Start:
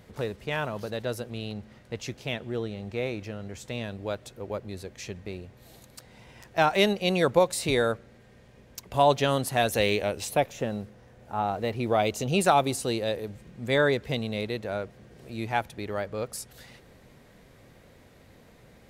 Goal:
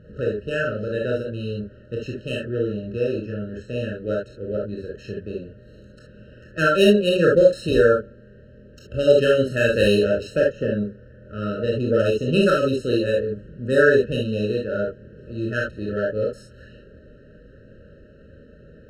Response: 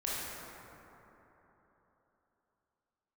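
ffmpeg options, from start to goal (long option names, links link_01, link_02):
-filter_complex "[0:a]adynamicsmooth=sensitivity=2:basefreq=2300[link_01];[1:a]atrim=start_sample=2205,atrim=end_sample=3528[link_02];[link_01][link_02]afir=irnorm=-1:irlink=0,afftfilt=real='re*eq(mod(floor(b*sr/1024/630),2),0)':imag='im*eq(mod(floor(b*sr/1024/630),2),0)':win_size=1024:overlap=0.75,volume=7dB"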